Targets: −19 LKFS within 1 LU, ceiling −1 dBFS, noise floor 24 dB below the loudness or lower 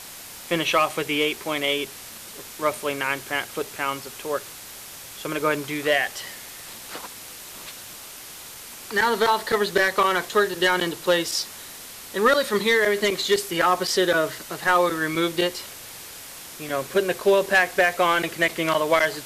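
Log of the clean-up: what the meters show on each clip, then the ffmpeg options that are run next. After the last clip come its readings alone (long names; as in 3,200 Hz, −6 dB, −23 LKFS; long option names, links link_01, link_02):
background noise floor −40 dBFS; target noise floor −47 dBFS; integrated loudness −22.5 LKFS; sample peak −9.0 dBFS; target loudness −19.0 LKFS
→ -af "afftdn=noise_reduction=7:noise_floor=-40"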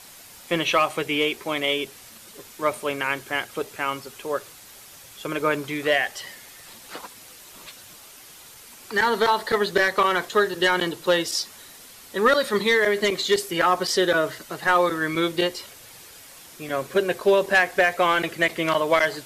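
background noise floor −46 dBFS; target noise floor −47 dBFS
→ -af "afftdn=noise_reduction=6:noise_floor=-46"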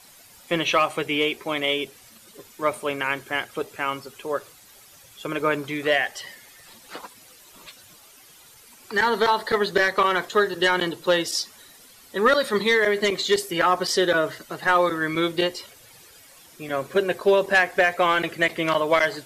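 background noise floor −51 dBFS; integrated loudness −22.5 LKFS; sample peak −9.0 dBFS; target loudness −19.0 LKFS
→ -af "volume=3.5dB"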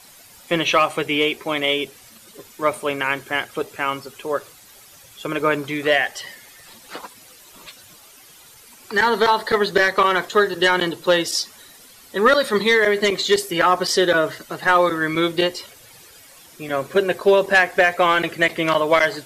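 integrated loudness −19.0 LKFS; sample peak −5.5 dBFS; background noise floor −47 dBFS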